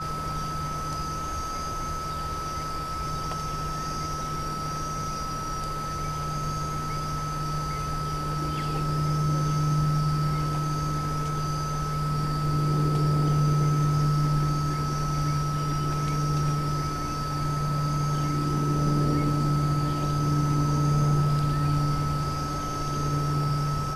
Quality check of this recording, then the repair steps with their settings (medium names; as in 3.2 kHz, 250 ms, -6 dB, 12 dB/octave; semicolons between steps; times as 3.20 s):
whine 1.3 kHz -31 dBFS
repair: band-stop 1.3 kHz, Q 30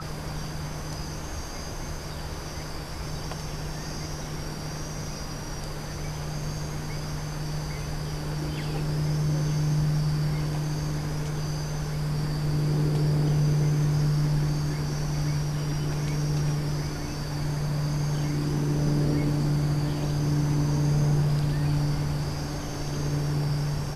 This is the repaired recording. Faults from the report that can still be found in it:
nothing left